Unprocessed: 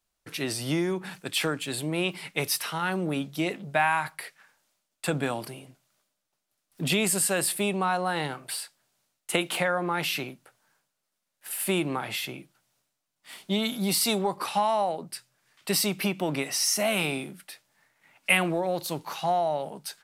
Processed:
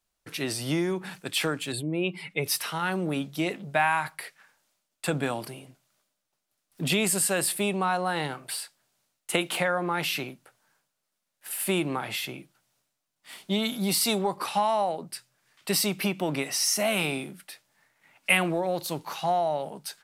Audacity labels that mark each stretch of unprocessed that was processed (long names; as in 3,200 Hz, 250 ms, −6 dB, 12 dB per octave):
1.720000	2.460000	expanding power law on the bin magnitudes exponent 1.6